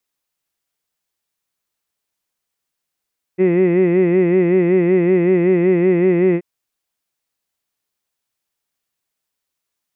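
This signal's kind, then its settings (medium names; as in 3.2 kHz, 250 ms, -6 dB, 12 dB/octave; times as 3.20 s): formant-synthesis vowel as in hid, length 3.03 s, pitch 179 Hz, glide 0 st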